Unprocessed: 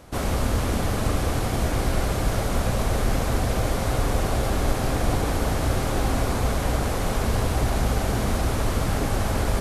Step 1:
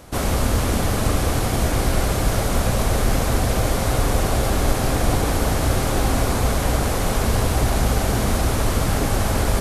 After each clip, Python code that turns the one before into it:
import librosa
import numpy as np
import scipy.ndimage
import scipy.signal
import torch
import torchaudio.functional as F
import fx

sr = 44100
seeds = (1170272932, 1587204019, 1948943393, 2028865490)

y = fx.high_shelf(x, sr, hz=5400.0, db=4.5)
y = y * librosa.db_to_amplitude(3.5)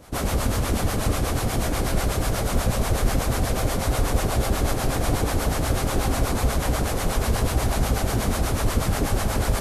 y = fx.harmonic_tremolo(x, sr, hz=8.2, depth_pct=70, crossover_hz=560.0)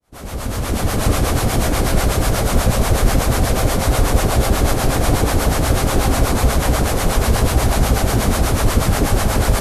y = fx.fade_in_head(x, sr, length_s=1.1)
y = y * librosa.db_to_amplitude(7.0)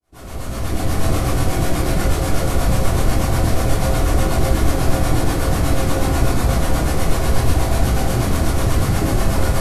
y = fx.room_shoebox(x, sr, seeds[0], volume_m3=540.0, walls='furnished', distance_m=3.3)
y = y * librosa.db_to_amplitude(-8.5)